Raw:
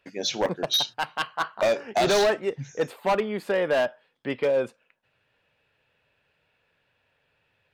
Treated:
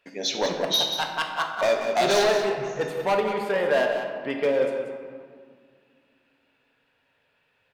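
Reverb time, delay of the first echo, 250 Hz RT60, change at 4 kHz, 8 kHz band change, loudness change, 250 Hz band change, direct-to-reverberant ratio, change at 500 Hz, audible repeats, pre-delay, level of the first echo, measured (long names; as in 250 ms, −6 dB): 2.0 s, 185 ms, 3.2 s, +1.5 dB, +1.5 dB, +1.0 dB, 0.0 dB, 1.5 dB, +1.5 dB, 1, 4 ms, −8.0 dB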